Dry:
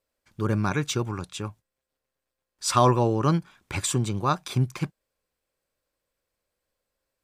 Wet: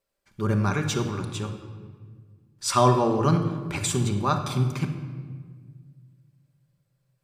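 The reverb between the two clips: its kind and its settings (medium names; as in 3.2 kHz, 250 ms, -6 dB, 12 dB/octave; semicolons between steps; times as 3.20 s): simulated room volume 2100 m³, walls mixed, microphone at 1.2 m; trim -1 dB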